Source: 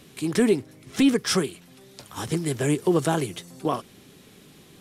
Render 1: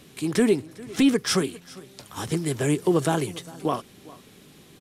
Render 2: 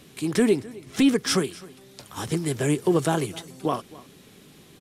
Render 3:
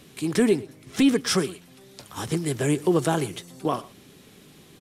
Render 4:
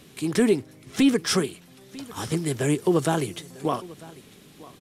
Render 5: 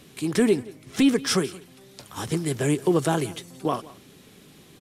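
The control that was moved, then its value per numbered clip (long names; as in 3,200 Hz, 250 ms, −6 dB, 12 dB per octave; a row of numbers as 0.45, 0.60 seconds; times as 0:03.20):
single-tap delay, delay time: 403, 262, 118, 947, 175 milliseconds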